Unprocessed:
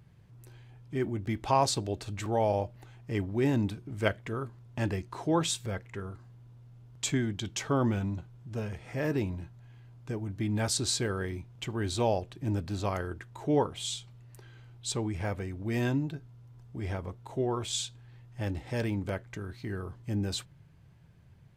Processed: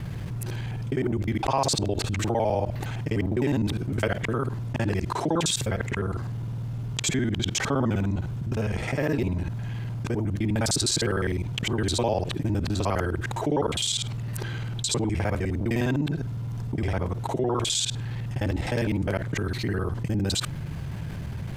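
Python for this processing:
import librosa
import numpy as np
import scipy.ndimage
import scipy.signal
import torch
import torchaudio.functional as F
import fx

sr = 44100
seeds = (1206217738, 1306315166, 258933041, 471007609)

y = fx.local_reverse(x, sr, ms=51.0)
y = fx.env_flatten(y, sr, amount_pct=70)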